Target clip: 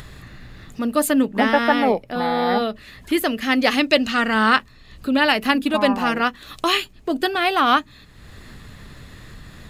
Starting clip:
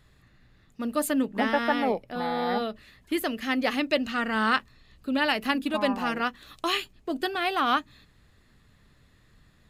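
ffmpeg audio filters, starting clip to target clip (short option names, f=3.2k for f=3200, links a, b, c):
-filter_complex "[0:a]asettb=1/sr,asplit=3[a][b][c];[a]atrim=end=3.524[d];[b]atrim=start=3.52:end=4.34,asetpts=PTS-STARTPTS,afade=t=in:d=0.004:c=qsin,afade=t=out:st=0.816:d=0.004:c=qsin,equalizer=f=5.8k:w=0.56:g=4.5[e];[c]atrim=start=4.336[f];[d][e]acrossfade=d=0.004:c1=hsin:c2=qsin[g];[g][f]acrossfade=d=0.004:c1=qsin:c2=hsin,asplit=2[h][i];[i]acompressor=mode=upward:threshold=-30dB:ratio=2.5,volume=3dB[j];[h][j]amix=inputs=2:normalize=0"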